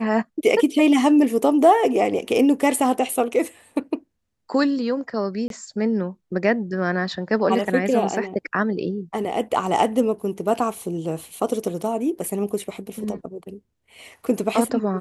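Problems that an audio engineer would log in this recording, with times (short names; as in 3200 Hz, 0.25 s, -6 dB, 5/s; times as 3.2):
5.48–5.5 gap 22 ms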